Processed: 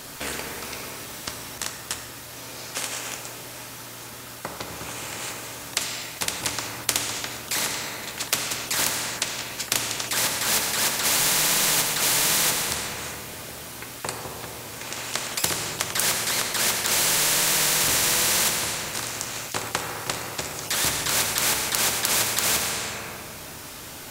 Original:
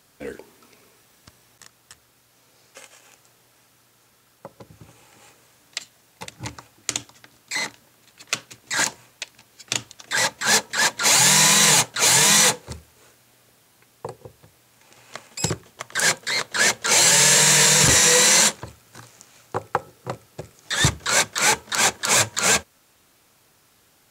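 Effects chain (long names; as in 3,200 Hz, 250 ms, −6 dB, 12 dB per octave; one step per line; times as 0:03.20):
on a send at −4.5 dB: convolution reverb RT60 1.3 s, pre-delay 3 ms
on the sum: every bin compressed towards the loudest bin 4 to 1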